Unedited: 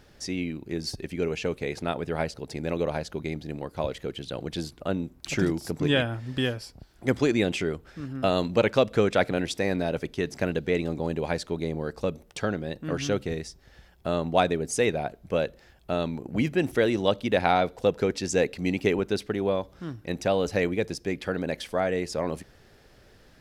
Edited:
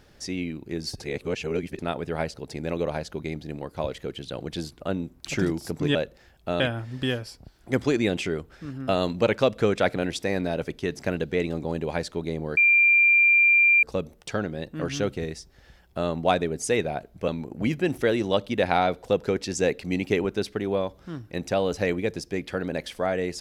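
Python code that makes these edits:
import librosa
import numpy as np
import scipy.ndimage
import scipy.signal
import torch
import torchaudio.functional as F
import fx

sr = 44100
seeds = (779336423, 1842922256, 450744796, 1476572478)

y = fx.edit(x, sr, fx.reverse_span(start_s=1.0, length_s=0.79),
    fx.insert_tone(at_s=11.92, length_s=1.26, hz=2380.0, db=-14.5),
    fx.move(start_s=15.37, length_s=0.65, to_s=5.95), tone=tone)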